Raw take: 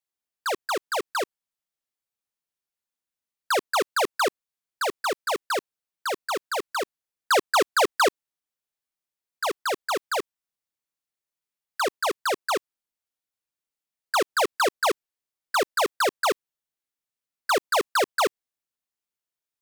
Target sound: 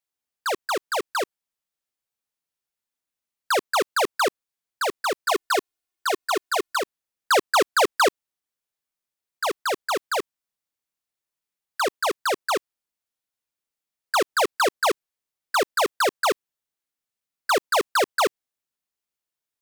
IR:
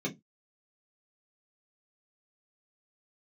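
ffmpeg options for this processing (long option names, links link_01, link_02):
-filter_complex "[0:a]asettb=1/sr,asplit=3[link_01][link_02][link_03];[link_01]atrim=end=5.264[link_04];[link_02]atrim=start=5.26:end=6.79,asetpts=PTS-STARTPTS,afade=type=in:duration=0.004:curve=qsin,afade=type=out:start_time=1.526:duration=0.004:curve=qsin,aecho=1:1:2.8:0.9,atrim=end_sample=67473[link_05];[link_03]atrim=start=6.786[link_06];[link_04][link_05]acrossfade=duration=0.004:curve1=hsin:curve2=qsin[link_07];[link_07][link_06]acrossfade=duration=0.004:curve1=qsin:curve2=hsin,volume=1.5dB"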